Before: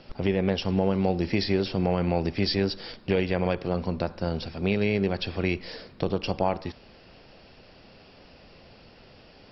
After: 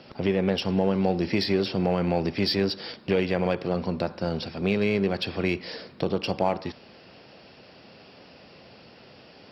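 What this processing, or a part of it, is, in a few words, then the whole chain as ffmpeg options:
parallel distortion: -filter_complex "[0:a]asplit=2[a][b];[b]asoftclip=type=hard:threshold=-27.5dB,volume=-9dB[c];[a][c]amix=inputs=2:normalize=0,highpass=120"

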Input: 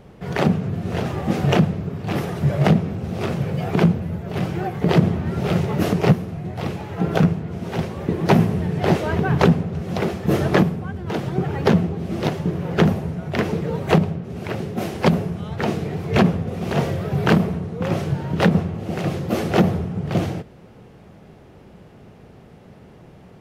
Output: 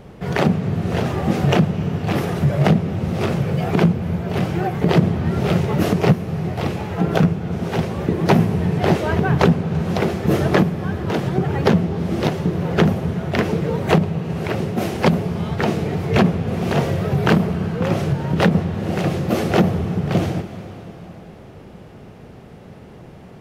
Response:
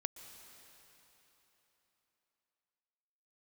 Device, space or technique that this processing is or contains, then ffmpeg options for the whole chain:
ducked reverb: -filter_complex "[0:a]asplit=3[a][b][c];[1:a]atrim=start_sample=2205[d];[b][d]afir=irnorm=-1:irlink=0[e];[c]apad=whole_len=1032179[f];[e][f]sidechaincompress=threshold=-21dB:ratio=8:attack=16:release=324,volume=3dB[g];[a][g]amix=inputs=2:normalize=0,volume=-2dB"

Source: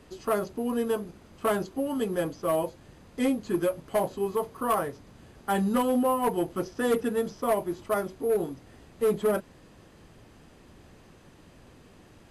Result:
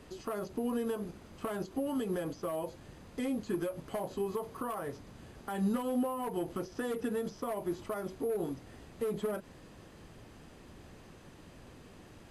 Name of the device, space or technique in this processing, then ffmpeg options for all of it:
de-esser from a sidechain: -filter_complex "[0:a]asplit=2[a][b];[b]highpass=f=4.2k:w=0.5412,highpass=f=4.2k:w=1.3066,apad=whole_len=542482[c];[a][c]sidechaincompress=threshold=-52dB:ratio=4:attack=3.3:release=100"

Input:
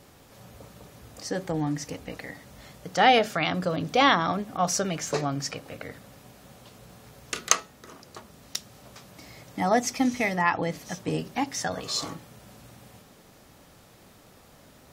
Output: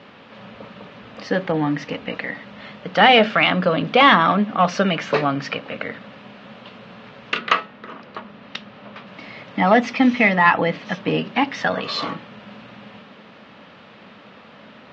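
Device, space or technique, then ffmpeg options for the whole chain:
overdrive pedal into a guitar cabinet: -filter_complex "[0:a]asettb=1/sr,asplit=3[a][b][c];[a]atrim=end=7.384[d];[b]atrim=start=7.38:end=9.07,asetpts=PTS-STARTPTS,afade=t=in:d=0.004:c=qsin,afade=t=out:st=1.686:d=0.004:c=qsin,aemphasis=mode=reproduction:type=50fm[e];[c]atrim=start=9.066[f];[d][e]acrossfade=d=0.004:c1=hsin:c2=qsin[g];[g][f]acrossfade=d=0.004:c1=qsin:c2=hsin,asplit=2[h][i];[i]highpass=f=720:p=1,volume=15dB,asoftclip=type=tanh:threshold=-5dB[j];[h][j]amix=inputs=2:normalize=0,lowpass=f=2.3k:p=1,volume=-6dB,highpass=100,equalizer=f=210:t=q:w=4:g=10,equalizer=f=360:t=q:w=4:g=-4,equalizer=f=760:t=q:w=4:g=-5,equalizer=f=2.8k:t=q:w=4:g=4,lowpass=f=3.9k:w=0.5412,lowpass=f=3.9k:w=1.3066,volume=5dB"

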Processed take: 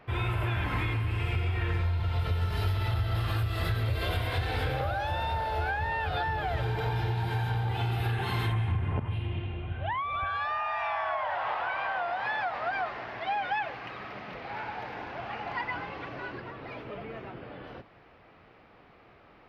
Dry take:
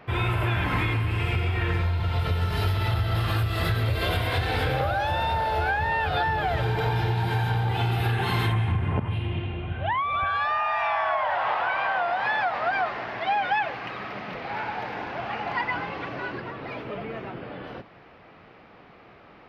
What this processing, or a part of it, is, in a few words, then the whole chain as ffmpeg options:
low shelf boost with a cut just above: -af "lowshelf=f=92:g=6,equalizer=f=180:t=o:w=0.77:g=-3,volume=-6dB"

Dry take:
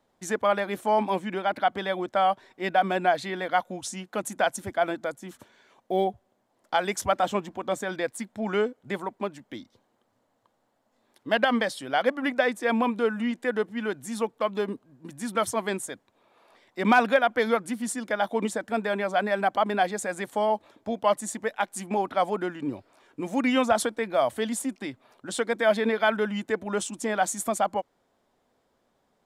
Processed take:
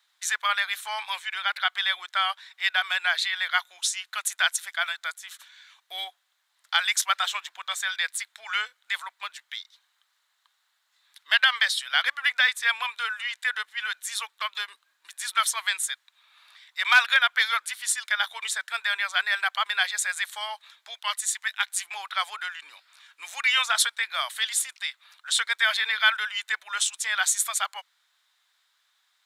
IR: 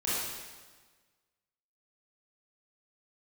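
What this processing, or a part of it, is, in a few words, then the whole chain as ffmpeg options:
headphones lying on a table: -filter_complex "[0:a]asettb=1/sr,asplit=3[a][b][c];[a]atrim=end=20.944[d];[b]atrim=start=20.94:end=21.65,asetpts=PTS-STARTPTS,afade=t=in:d=0.004:c=qsin,afade=t=out:st=0.706:d=0.004:c=qsin,highpass=f=1k:p=1[e];[c]atrim=start=21.646[f];[d][e]acrossfade=d=0.004:c1=hsin:c2=qsin[g];[g][f]acrossfade=d=0.004:c1=qsin:c2=hsin,highpass=f=1.4k:w=0.5412,highpass=f=1.4k:w=1.3066,equalizer=f=3.8k:t=o:w=0.37:g=8,volume=8dB"

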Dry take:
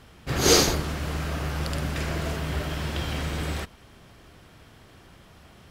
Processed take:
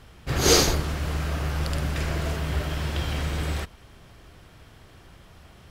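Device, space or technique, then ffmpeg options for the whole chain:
low shelf boost with a cut just above: -af "lowshelf=f=71:g=7,equalizer=f=230:t=o:w=0.77:g=-2.5"

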